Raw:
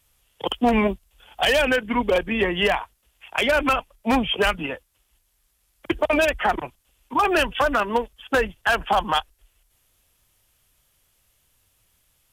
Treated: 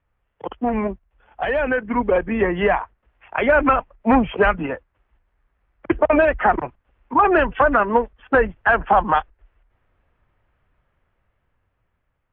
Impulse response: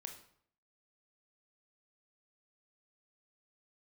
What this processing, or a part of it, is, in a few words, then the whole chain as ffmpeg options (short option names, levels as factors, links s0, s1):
action camera in a waterproof case: -af "lowpass=f=1900:w=0.5412,lowpass=f=1900:w=1.3066,dynaudnorm=f=780:g=5:m=3.35,volume=0.708" -ar 22050 -c:a aac -b:a 64k